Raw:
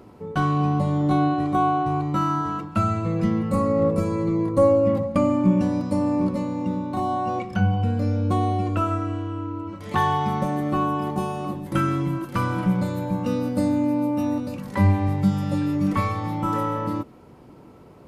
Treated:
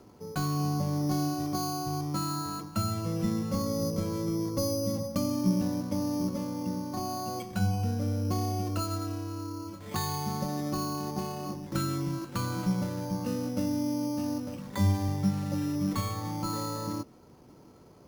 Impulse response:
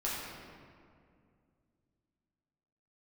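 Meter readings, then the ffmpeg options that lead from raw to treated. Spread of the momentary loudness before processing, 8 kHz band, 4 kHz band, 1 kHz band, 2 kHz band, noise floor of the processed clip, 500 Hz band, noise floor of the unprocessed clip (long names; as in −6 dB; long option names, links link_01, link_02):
7 LU, can't be measured, +2.0 dB, −11.5 dB, −11.0 dB, −54 dBFS, −11.0 dB, −47 dBFS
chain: -filter_complex "[0:a]acrusher=samples=8:mix=1:aa=0.000001,acrossover=split=320|3000[link_01][link_02][link_03];[link_02]acompressor=threshold=-27dB:ratio=6[link_04];[link_01][link_04][link_03]amix=inputs=3:normalize=0,volume=-7dB"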